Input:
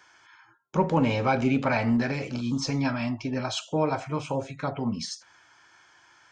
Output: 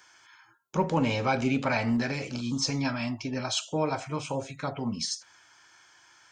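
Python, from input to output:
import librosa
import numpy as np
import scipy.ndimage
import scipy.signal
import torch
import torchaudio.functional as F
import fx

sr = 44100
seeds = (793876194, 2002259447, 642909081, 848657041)

y = fx.high_shelf(x, sr, hz=3800.0, db=10.0)
y = y * librosa.db_to_amplitude(-3.0)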